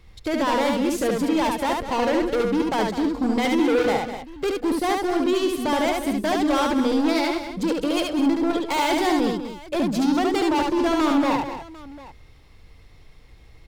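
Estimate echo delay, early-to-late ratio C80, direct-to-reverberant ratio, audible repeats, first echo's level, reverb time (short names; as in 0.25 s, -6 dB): 72 ms, none, none, 4, -3.0 dB, none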